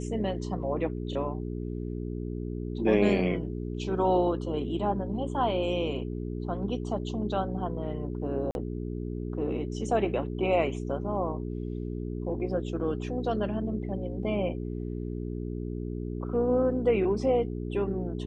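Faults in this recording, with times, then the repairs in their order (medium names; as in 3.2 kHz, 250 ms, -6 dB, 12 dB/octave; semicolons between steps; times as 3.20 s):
hum 60 Hz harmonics 7 -34 dBFS
8.51–8.55 s: dropout 41 ms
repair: de-hum 60 Hz, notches 7; interpolate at 8.51 s, 41 ms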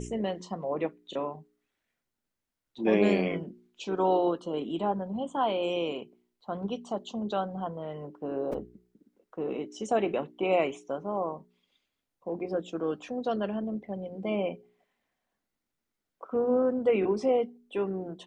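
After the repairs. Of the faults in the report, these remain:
nothing left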